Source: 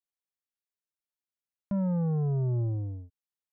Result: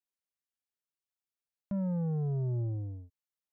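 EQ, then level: dynamic bell 1.1 kHz, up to -6 dB, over -60 dBFS, Q 2.8; -4.0 dB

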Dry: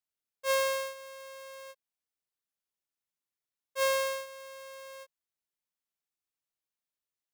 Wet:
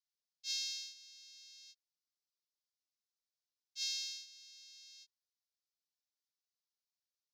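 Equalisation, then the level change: boxcar filter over 5 samples; inverse Chebyshev high-pass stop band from 1.2 kHz, stop band 70 dB; distance through air 120 m; +17.5 dB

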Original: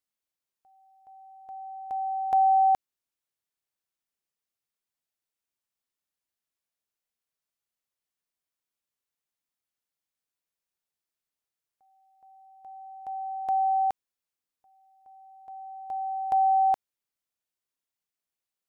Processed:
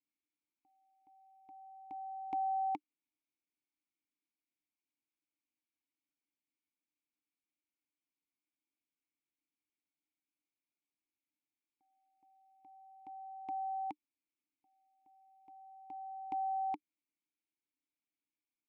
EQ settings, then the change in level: vowel filter u; peaking EQ 840 Hz -13 dB 1.3 oct; +12.5 dB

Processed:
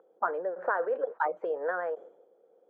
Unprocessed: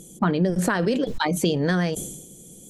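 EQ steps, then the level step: Chebyshev band-pass 480–1500 Hz, order 3; -2.0 dB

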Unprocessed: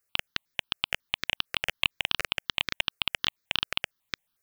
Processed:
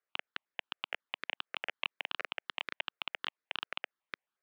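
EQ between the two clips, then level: band-pass 360–2200 Hz; -4.5 dB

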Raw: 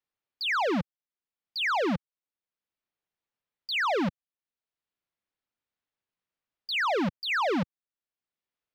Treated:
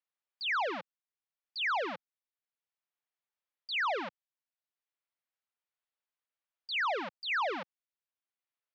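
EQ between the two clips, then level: band-pass 580–4300 Hz; -3.5 dB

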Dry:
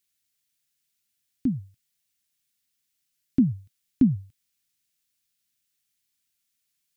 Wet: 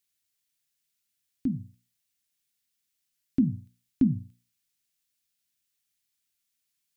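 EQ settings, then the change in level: hum notches 60/120/180/240/300 Hz; -2.5 dB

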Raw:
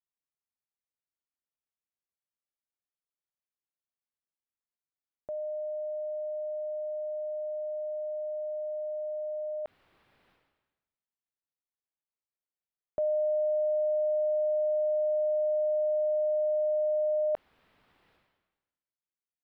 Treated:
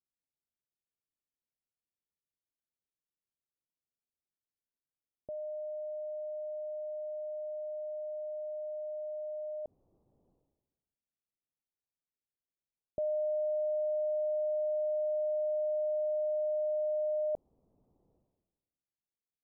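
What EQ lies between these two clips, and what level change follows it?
Gaussian low-pass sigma 14 samples; +2.0 dB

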